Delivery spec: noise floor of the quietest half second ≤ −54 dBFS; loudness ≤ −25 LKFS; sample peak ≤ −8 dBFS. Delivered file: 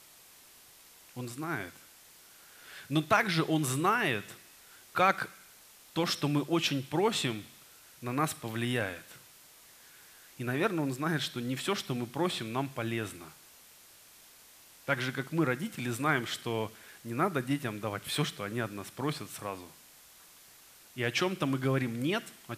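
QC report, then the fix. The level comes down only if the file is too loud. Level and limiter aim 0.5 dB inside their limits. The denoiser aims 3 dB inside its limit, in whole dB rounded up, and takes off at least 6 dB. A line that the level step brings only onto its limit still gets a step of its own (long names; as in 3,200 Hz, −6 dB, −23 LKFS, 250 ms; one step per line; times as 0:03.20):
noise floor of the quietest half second −57 dBFS: in spec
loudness −32.0 LKFS: in spec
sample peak −11.0 dBFS: in spec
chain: no processing needed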